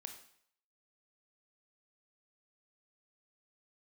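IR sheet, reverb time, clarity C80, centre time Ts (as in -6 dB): 0.65 s, 11.0 dB, 18 ms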